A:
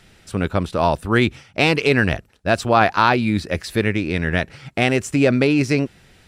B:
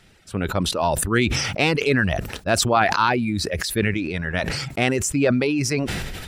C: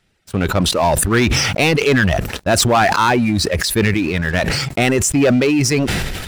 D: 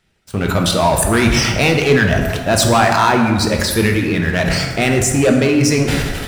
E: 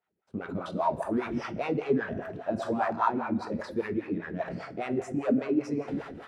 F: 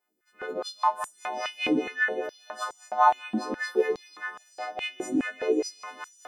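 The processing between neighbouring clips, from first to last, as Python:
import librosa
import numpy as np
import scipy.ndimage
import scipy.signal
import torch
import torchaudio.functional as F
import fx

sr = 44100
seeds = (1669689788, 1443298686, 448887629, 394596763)

y1 = fx.dereverb_blind(x, sr, rt60_s=1.6)
y1 = fx.sustainer(y1, sr, db_per_s=29.0)
y1 = y1 * 10.0 ** (-3.0 / 20.0)
y2 = fx.leveller(y1, sr, passes=3)
y2 = y2 * 10.0 ** (-3.5 / 20.0)
y3 = fx.rev_plate(y2, sr, seeds[0], rt60_s=1.6, hf_ratio=0.55, predelay_ms=0, drr_db=2.0)
y3 = y3 * 10.0 ** (-1.0 / 20.0)
y4 = fx.wah_lfo(y3, sr, hz=5.0, low_hz=220.0, high_hz=1200.0, q=2.8)
y4 = y4 * 10.0 ** (-8.0 / 20.0)
y5 = fx.freq_snap(y4, sr, grid_st=3)
y5 = fx.echo_diffused(y5, sr, ms=520, feedback_pct=42, wet_db=-15.5)
y5 = fx.filter_held_highpass(y5, sr, hz=4.8, low_hz=270.0, high_hz=7100.0)
y5 = y5 * 10.0 ** (-2.0 / 20.0)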